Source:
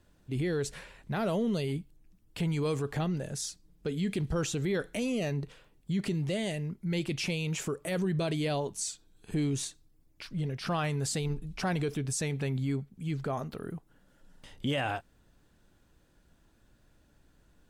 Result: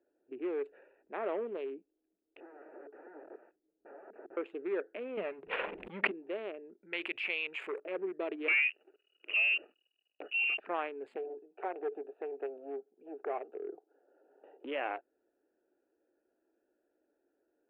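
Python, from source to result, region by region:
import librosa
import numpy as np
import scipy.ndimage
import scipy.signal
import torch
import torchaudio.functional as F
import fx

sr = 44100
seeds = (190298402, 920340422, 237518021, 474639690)

y = fx.chain(x, sr, fx.overflow_wrap(gain_db=35.0),
    fx.lowpass(hz=1900.0, slope=24), at=(2.4, 4.37))
y = fx.chain(y, sr, fx.low_shelf_res(hz=230.0, db=8.0, q=3.0),
    fx.pre_swell(db_per_s=21.0), at=(5.17, 6.11))
y = fx.chain(y, sr, fx.curve_eq(hz=(110.0, 270.0, 1900.0, 3700.0, 6500.0), db=(0, -14, 2, 5, 9)),
    fx.env_flatten(amount_pct=70), at=(6.83, 7.8))
y = fx.chain(y, sr, fx.freq_invert(carrier_hz=2900),
    fx.peak_eq(hz=970.0, db=-15.0, octaves=0.23),
    fx.leveller(passes=3), at=(8.48, 10.6))
y = fx.chain(y, sr, fx.clip_hard(threshold_db=-30.0),
    fx.cabinet(low_hz=330.0, low_slope=12, high_hz=3600.0, hz=(420.0, 750.0, 2100.0), db=(7, 8, -9)),
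    fx.band_squash(depth_pct=40), at=(11.16, 14.65))
y = fx.wiener(y, sr, points=41)
y = scipy.signal.sosfilt(scipy.signal.ellip(3, 1.0, 40, [350.0, 2500.0], 'bandpass', fs=sr, output='sos'), y)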